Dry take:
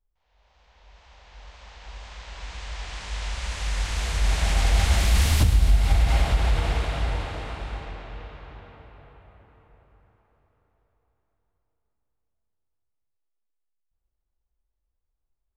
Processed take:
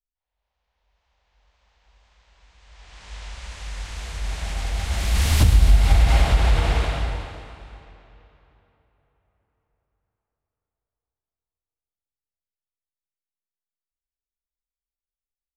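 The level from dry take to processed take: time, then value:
0:02.56 −18 dB
0:03.12 −6 dB
0:04.84 −6 dB
0:05.47 +4 dB
0:06.85 +4 dB
0:07.52 −7.5 dB
0:08.92 −19 dB

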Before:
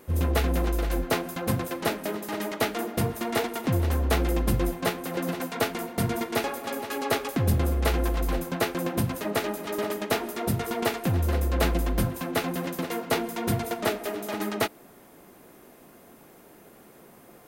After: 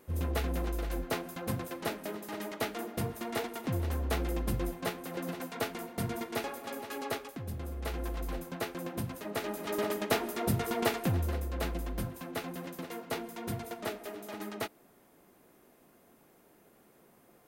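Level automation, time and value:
0:07.04 −8 dB
0:07.45 −17 dB
0:08.11 −10 dB
0:09.28 −10 dB
0:09.69 −3 dB
0:11.02 −3 dB
0:11.46 −10.5 dB

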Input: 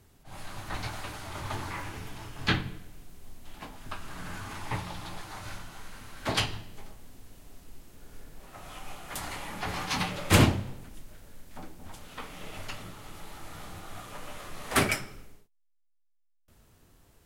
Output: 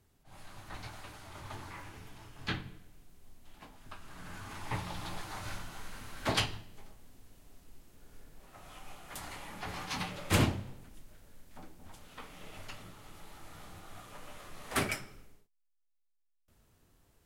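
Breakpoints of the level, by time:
0:04.01 −9.5 dB
0:05.05 −0.5 dB
0:06.26 −0.5 dB
0:06.66 −7 dB

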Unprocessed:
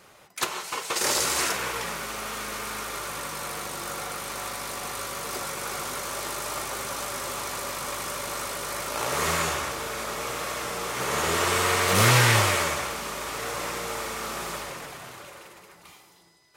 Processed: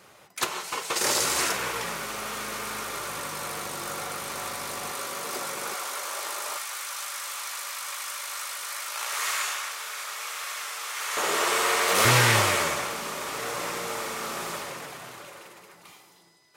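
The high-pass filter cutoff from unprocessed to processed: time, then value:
73 Hz
from 0:04.92 190 Hz
from 0:05.74 570 Hz
from 0:06.57 1,300 Hz
from 0:11.17 360 Hz
from 0:12.05 120 Hz

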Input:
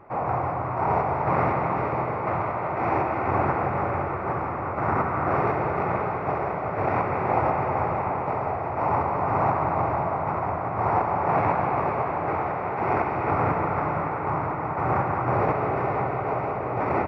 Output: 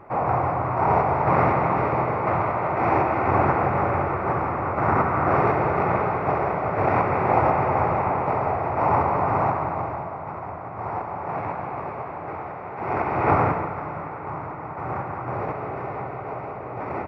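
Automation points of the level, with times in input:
0:09.16 +3.5 dB
0:10.12 −6.5 dB
0:12.71 −6.5 dB
0:13.31 +6 dB
0:13.76 −5.5 dB

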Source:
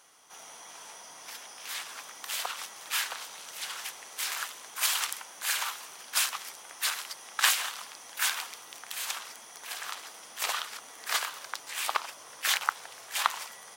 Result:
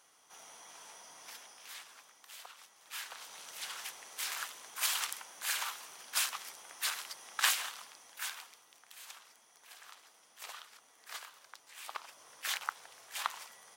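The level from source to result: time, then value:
0:01.30 −6 dB
0:02.26 −17 dB
0:02.77 −17 dB
0:03.37 −5 dB
0:07.51 −5 dB
0:08.74 −16 dB
0:11.79 −16 dB
0:12.22 −9 dB

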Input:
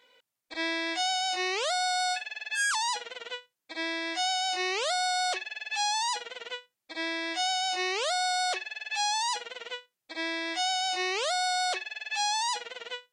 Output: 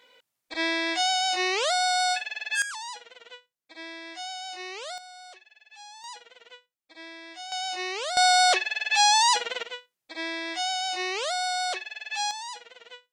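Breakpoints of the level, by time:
+4 dB
from 0:02.62 −8 dB
from 0:04.98 −18 dB
from 0:06.04 −11 dB
from 0:07.52 −2 dB
from 0:08.17 +9 dB
from 0:09.63 0 dB
from 0:12.31 −8 dB

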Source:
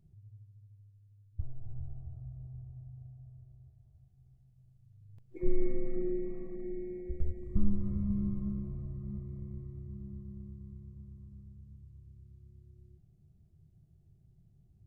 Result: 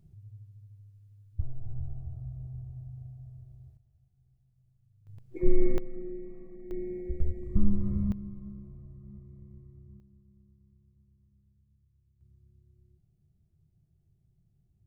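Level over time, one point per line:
+5 dB
from 0:03.77 −5.5 dB
from 0:05.07 +6 dB
from 0:05.78 −5.5 dB
from 0:06.71 +4 dB
from 0:08.12 −7.5 dB
from 0:10.00 −15.5 dB
from 0:12.21 −5.5 dB

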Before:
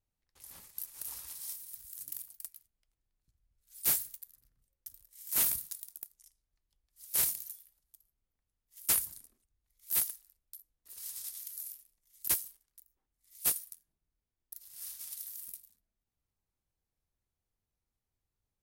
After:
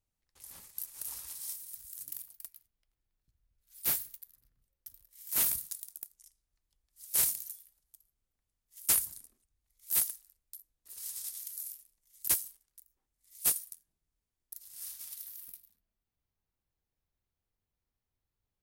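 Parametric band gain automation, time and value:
parametric band 8,100 Hz 1.1 octaves
0:01.88 +2.5 dB
0:02.43 −4.5 dB
0:05.04 −4.5 dB
0:05.68 +3 dB
0:14.74 +3 dB
0:15.50 −8 dB

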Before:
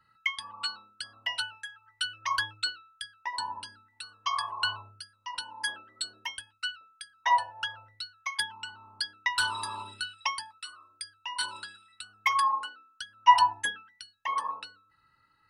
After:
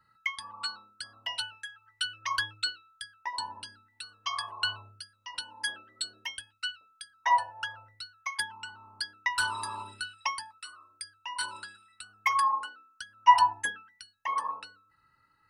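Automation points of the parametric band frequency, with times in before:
parametric band −7 dB 0.58 octaves
0:01.14 2,900 Hz
0:01.59 830 Hz
0:02.65 830 Hz
0:03.18 4,600 Hz
0:03.49 980 Hz
0:06.64 980 Hz
0:07.27 3,500 Hz

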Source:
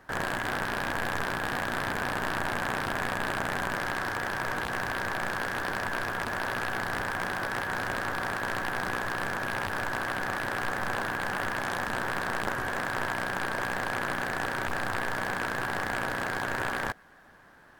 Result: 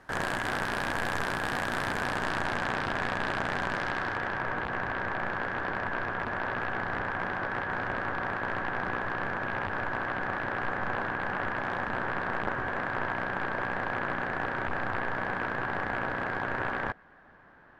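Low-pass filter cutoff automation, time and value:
0:01.84 11,000 Hz
0:02.81 5,000 Hz
0:03.77 5,000 Hz
0:04.49 2,300 Hz

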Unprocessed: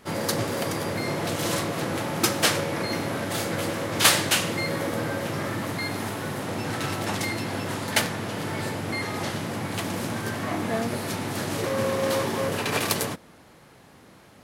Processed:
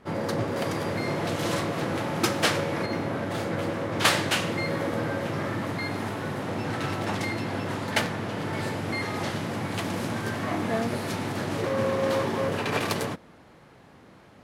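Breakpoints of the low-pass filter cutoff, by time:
low-pass filter 6 dB per octave
1,500 Hz
from 0:00.56 3,600 Hz
from 0:02.86 1,700 Hz
from 0:04.05 2,900 Hz
from 0:08.53 5,200 Hz
from 0:11.32 2,800 Hz

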